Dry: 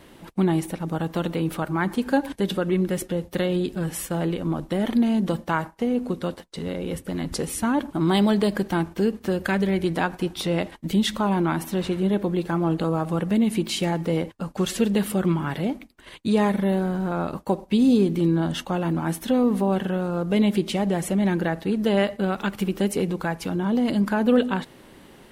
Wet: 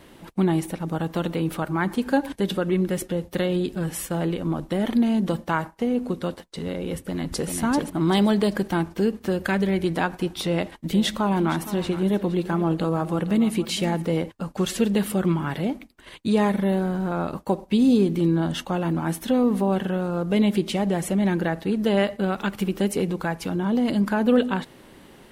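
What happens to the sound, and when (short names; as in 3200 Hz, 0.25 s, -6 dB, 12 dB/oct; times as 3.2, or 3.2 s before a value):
6.98–7.5 echo throw 0.39 s, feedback 30%, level -4.5 dB
10.42–14.02 echo 0.465 s -14 dB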